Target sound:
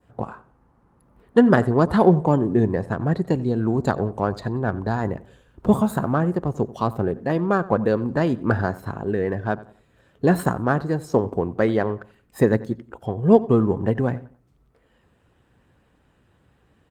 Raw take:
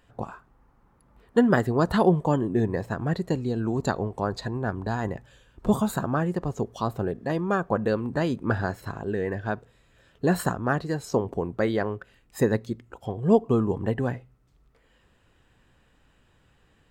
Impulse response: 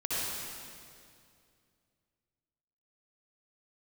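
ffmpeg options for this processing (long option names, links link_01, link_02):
-filter_complex "[0:a]highpass=59,adynamicequalizer=threshold=0.00708:dfrequency=2500:dqfactor=0.82:tfrequency=2500:tqfactor=0.82:attack=5:release=100:ratio=0.375:range=2.5:mode=cutabove:tftype=bell,asplit=2[link_01][link_02];[link_02]adynamicsmooth=sensitivity=4:basefreq=1800,volume=-2dB[link_03];[link_01][link_03]amix=inputs=2:normalize=0,asplit=2[link_04][link_05];[link_05]adelay=90,lowpass=frequency=3400:poles=1,volume=-18.5dB,asplit=2[link_06][link_07];[link_07]adelay=90,lowpass=frequency=3400:poles=1,volume=0.34,asplit=2[link_08][link_09];[link_09]adelay=90,lowpass=frequency=3400:poles=1,volume=0.34[link_10];[link_04][link_06][link_08][link_10]amix=inputs=4:normalize=0,asplit=2[link_11][link_12];[1:a]atrim=start_sample=2205,atrim=end_sample=3087,adelay=127[link_13];[link_12][link_13]afir=irnorm=-1:irlink=0,volume=-31dB[link_14];[link_11][link_14]amix=inputs=2:normalize=0" -ar 48000 -c:a libopus -b:a 32k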